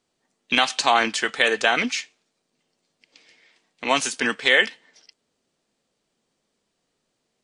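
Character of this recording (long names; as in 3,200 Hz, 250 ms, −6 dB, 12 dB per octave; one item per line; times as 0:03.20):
background noise floor −76 dBFS
spectral slope −1.0 dB per octave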